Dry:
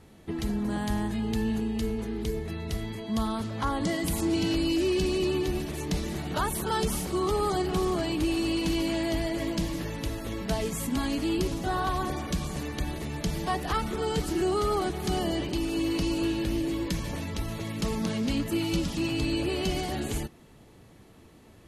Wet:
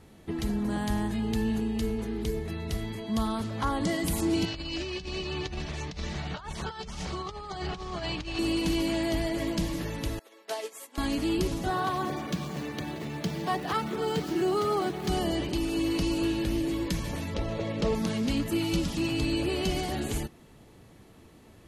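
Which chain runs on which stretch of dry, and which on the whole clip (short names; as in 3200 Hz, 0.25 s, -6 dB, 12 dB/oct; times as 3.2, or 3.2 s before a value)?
4.45–8.39 bell 310 Hz -11.5 dB 1.3 oct + negative-ratio compressor -34 dBFS, ratio -0.5 + LPF 6200 Hz 24 dB/oct
10.19–10.98 HPF 410 Hz 24 dB/oct + upward expander 2.5:1, over -42 dBFS
11.7–15.08 median filter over 5 samples + HPF 110 Hz 24 dB/oct
17.34–17.95 LPF 4900 Hz + bell 540 Hz +12.5 dB 0.65 oct
whole clip: dry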